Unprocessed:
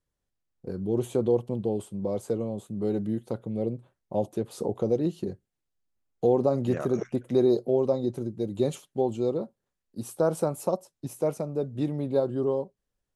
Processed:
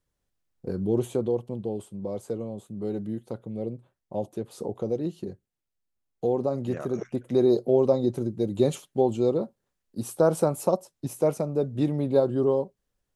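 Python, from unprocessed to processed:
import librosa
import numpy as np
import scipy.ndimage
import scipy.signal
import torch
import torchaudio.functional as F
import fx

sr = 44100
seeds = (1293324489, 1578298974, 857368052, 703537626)

y = fx.gain(x, sr, db=fx.line((0.85, 3.5), (1.33, -3.0), (6.89, -3.0), (7.8, 3.5)))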